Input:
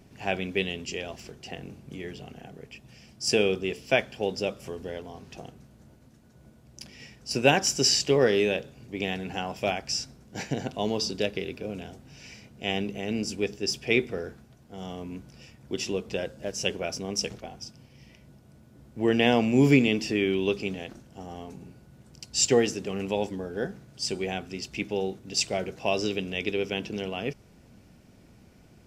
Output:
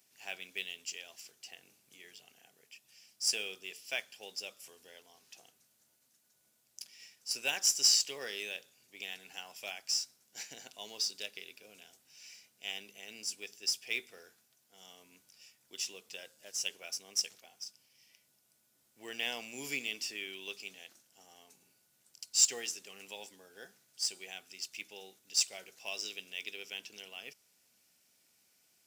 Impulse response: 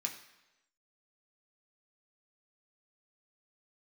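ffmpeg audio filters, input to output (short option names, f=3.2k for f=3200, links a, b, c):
-af "aderivative,acrusher=bits=5:mode=log:mix=0:aa=0.000001"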